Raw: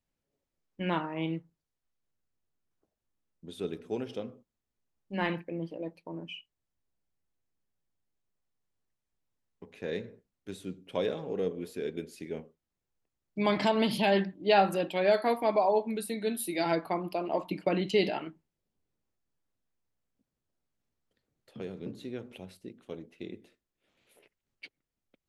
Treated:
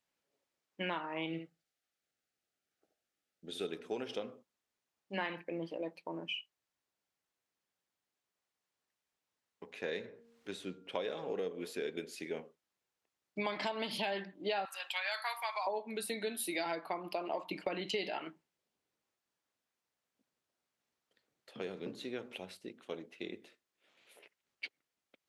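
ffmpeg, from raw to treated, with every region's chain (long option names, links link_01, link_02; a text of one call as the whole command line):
ffmpeg -i in.wav -filter_complex "[0:a]asettb=1/sr,asplit=3[link_01][link_02][link_03];[link_01]atrim=end=1.264[link_04];[link_02]atrim=start=1.26:end=3.67,asetpts=PTS-STARTPTS,afade=type=in:duration=0.004:curve=qsin,afade=type=out:start_time=2.406:duration=0.004:curve=qsin,asuperstop=centerf=1000:order=4:qfactor=3.2,aecho=1:1:73:0.355,atrim=end_sample=106281[link_05];[link_03]atrim=start=3.666[link_06];[link_04][link_05]acrossfade=duration=0.004:curve1=hsin:curve2=qsin[link_07];[link_07][link_06]acrossfade=duration=0.004:curve1=qsin:curve2=hsin,asettb=1/sr,asplit=3[link_08][link_09][link_10];[link_08]atrim=end=10.064[link_11];[link_09]atrim=start=10.06:end=11.07,asetpts=PTS-STARTPTS,afade=type=in:duration=0.004:curve=qsin,afade=type=out:start_time=1.006:duration=0.004:curve=qsin,highshelf=frequency=6900:gain=-8,bandreject=frequency=232.4:width_type=h:width=4,bandreject=frequency=464.8:width_type=h:width=4,bandreject=frequency=697.2:width_type=h:width=4,bandreject=frequency=929.6:width_type=h:width=4,bandreject=frequency=1162:width_type=h:width=4,bandreject=frequency=1394.4:width_type=h:width=4,bandreject=frequency=1626.8:width_type=h:width=4,acompressor=mode=upward:threshold=-49dB:ratio=2.5:attack=3.2:release=140:knee=2.83:detection=peak[link_12];[link_10]atrim=start=11.066[link_13];[link_11][link_12]acrossfade=duration=0.004:curve1=hsin:curve2=qsin[link_14];[link_14][link_13]acrossfade=duration=0.004:curve1=qsin:curve2=hsin,asettb=1/sr,asplit=3[link_15][link_16][link_17];[link_15]atrim=end=14.654[link_18];[link_16]atrim=start=14.65:end=15.67,asetpts=PTS-STARTPTS,afade=type=in:duration=0.004:curve=qsin,afade=type=out:start_time=1.016:duration=0.004:curve=qsin,highpass=frequency=970:width=0.5412,highpass=frequency=970:width=1.3066,highshelf=frequency=5000:gain=7[link_19];[link_17]atrim=start=15.666[link_20];[link_18][link_19]acrossfade=duration=0.004:curve1=hsin:curve2=qsin[link_21];[link_21][link_20]acrossfade=duration=0.004:curve1=qsin:curve2=hsin,highpass=frequency=770:poles=1,highshelf=frequency=9600:gain=-10,acompressor=threshold=-40dB:ratio=6,volume=6dB" out.wav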